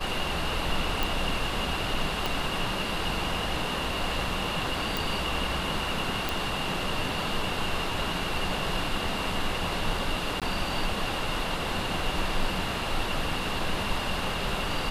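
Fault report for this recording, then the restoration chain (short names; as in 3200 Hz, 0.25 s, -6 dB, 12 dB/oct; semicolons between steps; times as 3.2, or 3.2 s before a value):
1.03 pop
2.26 pop
4.97 pop
6.29 pop
10.4–10.42 gap 17 ms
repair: de-click; interpolate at 10.4, 17 ms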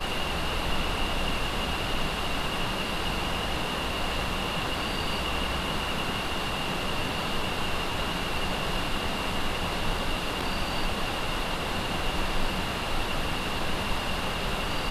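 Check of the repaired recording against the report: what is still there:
2.26 pop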